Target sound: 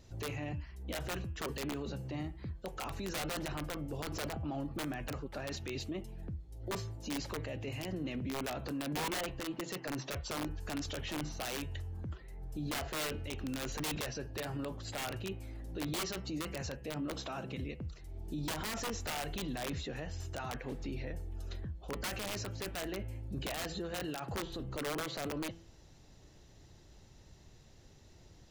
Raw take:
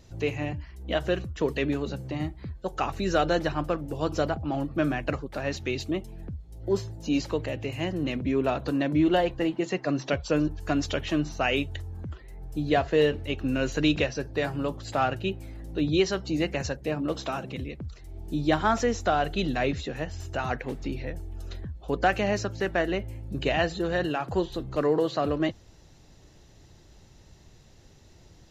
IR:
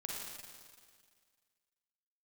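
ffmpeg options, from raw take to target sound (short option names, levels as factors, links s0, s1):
-af "aeval=exprs='(mod(7.94*val(0)+1,2)-1)/7.94':c=same,alimiter=level_in=1.41:limit=0.0631:level=0:latency=1:release=13,volume=0.708,bandreject=f=166.2:t=h:w=4,bandreject=f=332.4:t=h:w=4,bandreject=f=498.6:t=h:w=4,bandreject=f=664.8:t=h:w=4,bandreject=f=831:t=h:w=4,bandreject=f=997.2:t=h:w=4,bandreject=f=1163.4:t=h:w=4,bandreject=f=1329.6:t=h:w=4,bandreject=f=1495.8:t=h:w=4,bandreject=f=1662:t=h:w=4,bandreject=f=1828.2:t=h:w=4,bandreject=f=1994.4:t=h:w=4,bandreject=f=2160.6:t=h:w=4,bandreject=f=2326.8:t=h:w=4,bandreject=f=2493:t=h:w=4,bandreject=f=2659.2:t=h:w=4,bandreject=f=2825.4:t=h:w=4,bandreject=f=2991.6:t=h:w=4,bandreject=f=3157.8:t=h:w=4,volume=0.596"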